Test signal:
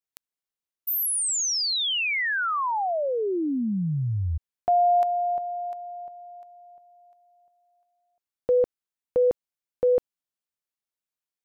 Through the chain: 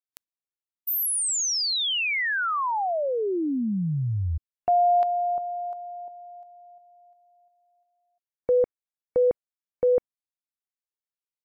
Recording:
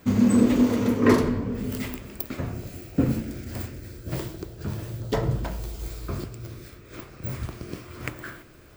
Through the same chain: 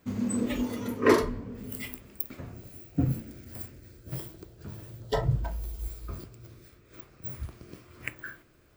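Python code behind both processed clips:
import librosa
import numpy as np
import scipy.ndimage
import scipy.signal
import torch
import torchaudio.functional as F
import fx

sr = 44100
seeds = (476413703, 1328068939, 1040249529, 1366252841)

y = fx.noise_reduce_blind(x, sr, reduce_db=11)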